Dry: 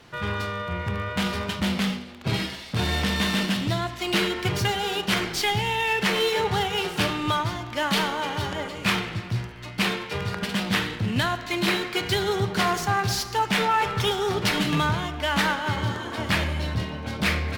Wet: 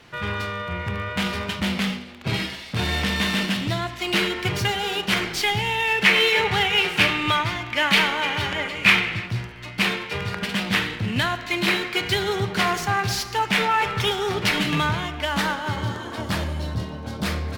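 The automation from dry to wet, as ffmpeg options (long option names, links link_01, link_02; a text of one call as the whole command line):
ffmpeg -i in.wav -af "asetnsamples=nb_out_samples=441:pad=0,asendcmd='6.04 equalizer g 12.5;9.26 equalizer g 5;15.25 equalizer g -2.5;16.21 equalizer g -8.5',equalizer=frequency=2300:width_type=o:width=1:gain=4" out.wav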